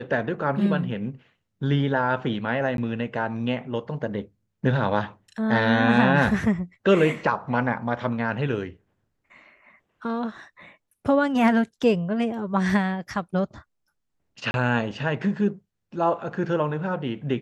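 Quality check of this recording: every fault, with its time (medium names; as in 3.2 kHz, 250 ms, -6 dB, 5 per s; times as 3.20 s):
2.77–2.78 s: dropout 12 ms
14.51–14.54 s: dropout 31 ms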